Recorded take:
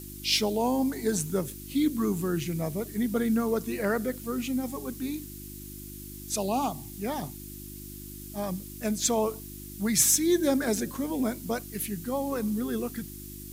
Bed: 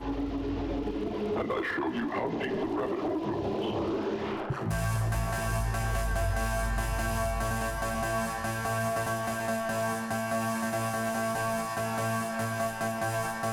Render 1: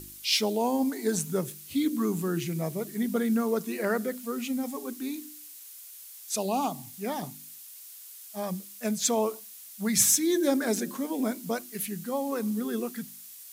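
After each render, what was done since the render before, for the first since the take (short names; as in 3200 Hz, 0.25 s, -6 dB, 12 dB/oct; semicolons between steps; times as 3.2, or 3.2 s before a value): de-hum 50 Hz, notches 7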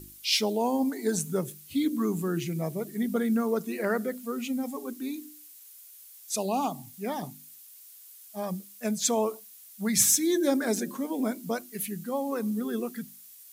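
denoiser 6 dB, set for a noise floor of -47 dBFS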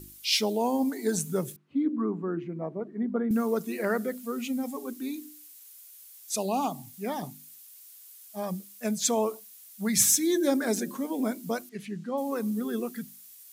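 1.56–3.31 Chebyshev band-pass 230–1200 Hz; 11.69–12.18 air absorption 120 m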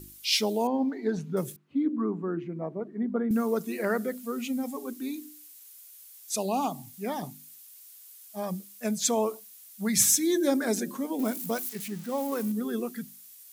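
0.67–1.37 air absorption 270 m; 11.19–12.52 switching spikes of -31 dBFS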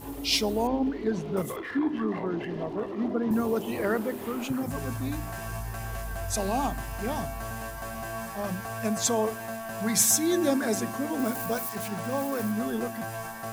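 add bed -5.5 dB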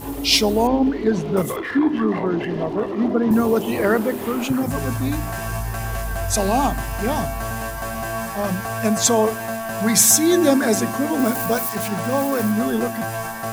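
gain +9 dB; limiter -2 dBFS, peak gain reduction 2.5 dB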